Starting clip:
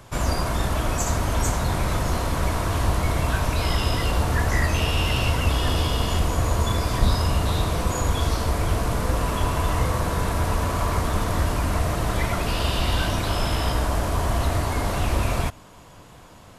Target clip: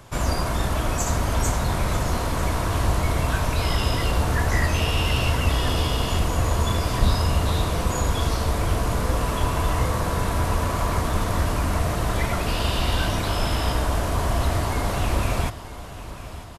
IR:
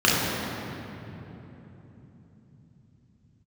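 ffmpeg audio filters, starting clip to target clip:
-af "aecho=1:1:947|1894|2841|3788|4735:0.178|0.0996|0.0558|0.0312|0.0175"

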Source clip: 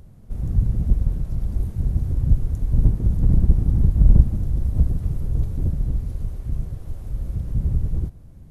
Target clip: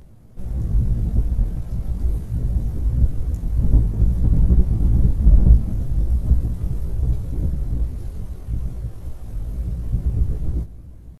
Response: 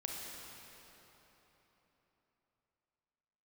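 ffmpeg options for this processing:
-filter_complex "[0:a]bass=f=250:g=-3,treble=f=4k:g=0,atempo=0.76,flanger=delay=16:depth=2.3:speed=2.4,asplit=2[a][b];[1:a]atrim=start_sample=2205[c];[b][c]afir=irnorm=-1:irlink=0,volume=-14dB[d];[a][d]amix=inputs=2:normalize=0,volume=5.5dB"

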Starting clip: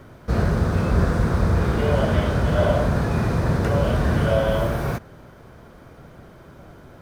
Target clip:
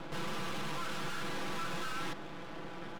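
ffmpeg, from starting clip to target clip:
-filter_complex "[0:a]highpass=f=58:w=0.5412,highpass=f=58:w=1.3066,acrossover=split=350[a][b];[a]acompressor=threshold=-29dB:ratio=6[c];[c][b]amix=inputs=2:normalize=0,alimiter=limit=-20.5dB:level=0:latency=1:release=202,aresample=16000,asoftclip=type=tanh:threshold=-37.5dB,aresample=44100,adynamicsmooth=sensitivity=4:basefreq=1.3k,aeval=exprs='max(val(0),0)':c=same,asplit=2[d][e];[e]adelay=14,volume=-4.5dB[f];[d][f]amix=inputs=2:normalize=0,asetrate=103194,aresample=44100,volume=4.5dB"

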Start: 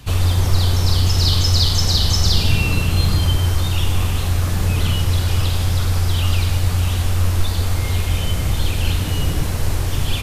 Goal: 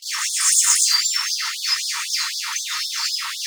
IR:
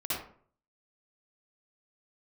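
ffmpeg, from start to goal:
-filter_complex "[0:a]bass=f=250:g=-7,treble=f=4k:g=-12,bandreject=f=50:t=h:w=6,bandreject=f=100:t=h:w=6,bandreject=f=150:t=h:w=6,bandreject=f=200:t=h:w=6,bandreject=f=250:t=h:w=6,areverse,acompressor=mode=upward:threshold=-32dB:ratio=2.5,areverse,atempo=1.7,adynamicsmooth=sensitivity=2.5:basefreq=4.5k,crystalizer=i=6:c=0[a];[1:a]atrim=start_sample=2205[b];[a][b]afir=irnorm=-1:irlink=0,asetrate=76440,aresample=44100,afftfilt=real='re*gte(b*sr/1024,860*pow(3400/860,0.5+0.5*sin(2*PI*3.9*pts/sr)))':imag='im*gte(b*sr/1024,860*pow(3400/860,0.5+0.5*sin(2*PI*3.9*pts/sr)))':win_size=1024:overlap=0.75,volume=-1dB"

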